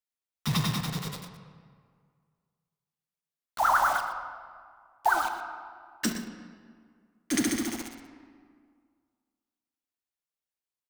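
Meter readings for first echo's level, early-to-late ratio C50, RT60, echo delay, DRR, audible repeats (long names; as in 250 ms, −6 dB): −12.5 dB, 6.5 dB, 2.0 s, 120 ms, 5.0 dB, 1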